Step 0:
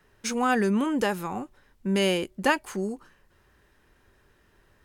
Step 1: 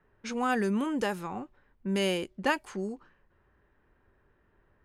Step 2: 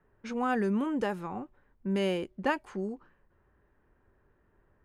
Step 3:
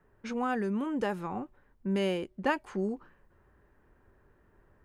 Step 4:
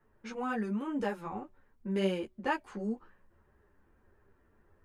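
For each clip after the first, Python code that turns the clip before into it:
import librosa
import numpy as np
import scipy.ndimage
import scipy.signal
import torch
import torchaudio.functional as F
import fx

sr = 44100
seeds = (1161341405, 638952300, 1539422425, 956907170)

y1 = fx.env_lowpass(x, sr, base_hz=1700.0, full_db=-21.0)
y1 = y1 * 10.0 ** (-4.5 / 20.0)
y2 = fx.high_shelf(y1, sr, hz=2800.0, db=-11.5)
y3 = fx.rider(y2, sr, range_db=4, speed_s=0.5)
y4 = fx.ensemble(y3, sr)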